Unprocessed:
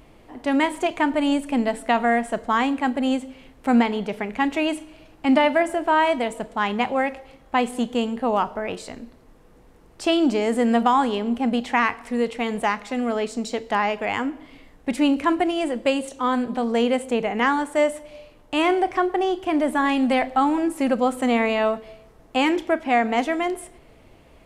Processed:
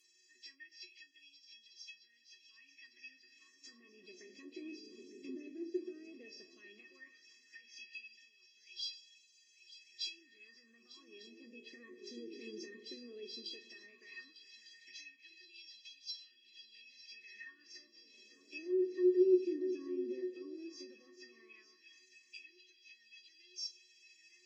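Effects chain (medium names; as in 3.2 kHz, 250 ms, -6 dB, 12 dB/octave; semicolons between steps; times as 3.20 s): knee-point frequency compression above 2 kHz 1.5:1; low-pass that closes with the level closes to 1.1 kHz, closed at -16.5 dBFS; hum notches 50/100/150/200/250 Hz; in parallel at +2 dB: compression, threshold -31 dBFS, peak gain reduction 16.5 dB; on the sum: peak limiter -13.5 dBFS, peak gain reduction 8 dB; Chebyshev band-stop 140–5800 Hz, order 2; feedback comb 370 Hz, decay 0.19 s, harmonics odd, mix 100%; shuffle delay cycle 1200 ms, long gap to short 3:1, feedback 70%, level -14 dB; LFO high-pass sine 0.14 Hz 400–3400 Hz; trim +13.5 dB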